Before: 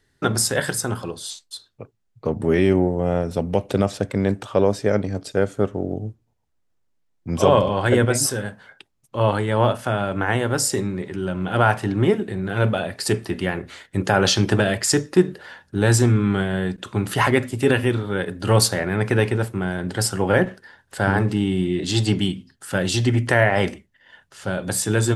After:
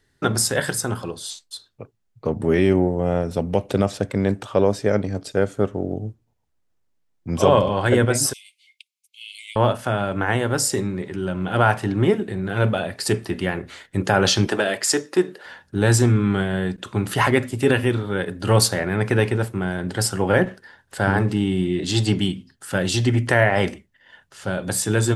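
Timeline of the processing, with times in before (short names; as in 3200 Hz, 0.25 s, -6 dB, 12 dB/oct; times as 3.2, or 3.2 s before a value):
8.33–9.56 Chebyshev high-pass 2100 Hz, order 10
14.47–15.46 HPF 320 Hz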